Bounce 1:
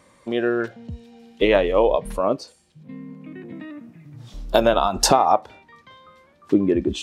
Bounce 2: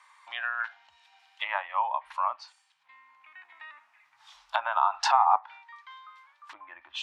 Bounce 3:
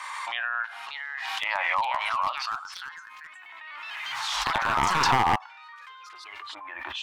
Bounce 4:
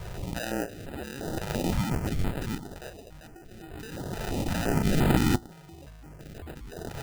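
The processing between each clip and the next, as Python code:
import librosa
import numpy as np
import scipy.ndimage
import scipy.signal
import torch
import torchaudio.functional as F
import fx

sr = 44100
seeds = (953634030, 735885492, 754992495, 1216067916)

y1 = fx.lowpass(x, sr, hz=2600.0, slope=6)
y1 = fx.env_lowpass_down(y1, sr, base_hz=1400.0, full_db=-15.0)
y1 = scipy.signal.sosfilt(scipy.signal.ellip(4, 1.0, 50, 880.0, 'highpass', fs=sr, output='sos'), y1)
y1 = y1 * librosa.db_to_amplitude(2.5)
y2 = np.minimum(y1, 2.0 * 10.0 ** (-18.5 / 20.0) - y1)
y2 = fx.echo_pitch(y2, sr, ms=638, semitones=3, count=3, db_per_echo=-6.0)
y2 = fx.pre_swell(y2, sr, db_per_s=20.0)
y3 = fx.sample_hold(y2, sr, seeds[0], rate_hz=1100.0, jitter_pct=0)
y3 = fx.filter_held_notch(y3, sr, hz=5.8, low_hz=260.0, high_hz=5800.0)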